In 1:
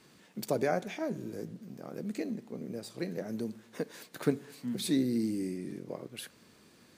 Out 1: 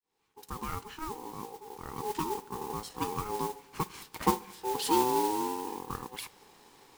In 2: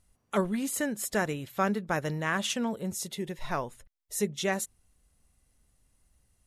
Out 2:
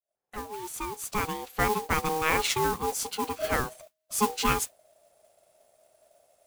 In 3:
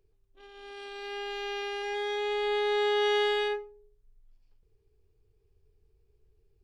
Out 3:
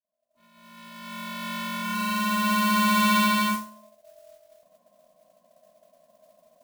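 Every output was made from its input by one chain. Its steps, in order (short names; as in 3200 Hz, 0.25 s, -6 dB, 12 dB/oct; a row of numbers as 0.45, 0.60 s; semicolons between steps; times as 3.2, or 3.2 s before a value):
opening faded in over 2.16 s; modulation noise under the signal 12 dB; ring modulator 630 Hz; normalise peaks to -9 dBFS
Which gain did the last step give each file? +5.0, +6.5, +8.0 dB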